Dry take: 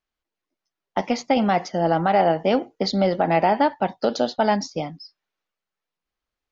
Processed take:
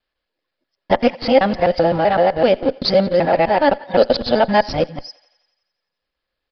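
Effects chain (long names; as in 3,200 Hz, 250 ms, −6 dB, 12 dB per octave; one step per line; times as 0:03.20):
reversed piece by piece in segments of 128 ms
high-shelf EQ 3,700 Hz +8.5 dB
hollow resonant body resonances 530/1,700 Hz, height 10 dB, ringing for 40 ms
in parallel at −12 dB: comparator with hysteresis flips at −22.5 dBFS
on the sum: speech leveller 0.5 s
feedback echo with a high-pass in the loop 87 ms, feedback 66%, high-pass 530 Hz, level −22 dB
on a send at −21 dB: convolution reverb RT60 0.35 s, pre-delay 3 ms
on the sum: downsampling to 11,025 Hz
level +1.5 dB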